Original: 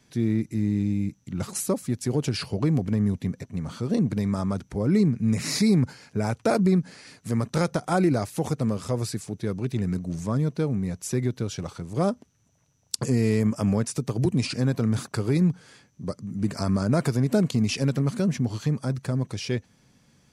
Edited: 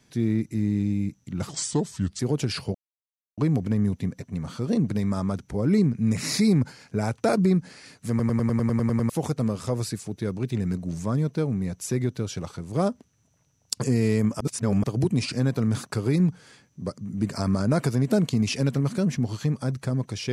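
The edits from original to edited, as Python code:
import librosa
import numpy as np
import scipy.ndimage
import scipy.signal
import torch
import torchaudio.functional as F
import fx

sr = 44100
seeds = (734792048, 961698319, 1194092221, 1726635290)

y = fx.edit(x, sr, fx.speed_span(start_s=1.49, length_s=0.55, speed=0.78),
    fx.insert_silence(at_s=2.59, length_s=0.63),
    fx.stutter_over(start_s=7.31, slice_s=0.1, count=10),
    fx.reverse_span(start_s=13.62, length_s=0.43), tone=tone)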